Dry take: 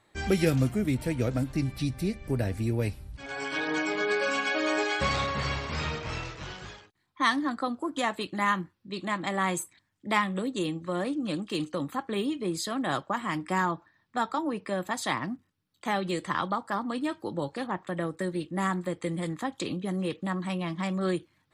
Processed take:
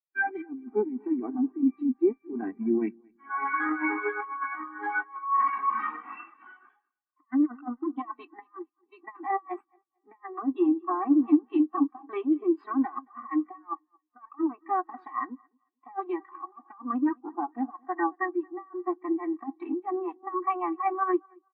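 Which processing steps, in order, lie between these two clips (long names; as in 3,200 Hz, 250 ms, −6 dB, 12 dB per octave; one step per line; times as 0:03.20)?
lower of the sound and its delayed copy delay 2.6 ms
octave-band graphic EQ 125/250/500/1,000/2,000/4,000/8,000 Hz −8/+7/−10/+10/+4/−4/−8 dB
compressor whose output falls as the input rises −29 dBFS, ratio −0.5
three-way crossover with the lows and the highs turned down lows −21 dB, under 180 Hz, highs −12 dB, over 4,800 Hz
on a send: repeating echo 223 ms, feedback 51%, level −12.5 dB
on the sum: every bin expanded away from the loudest bin 2.5 to 1
level +4 dB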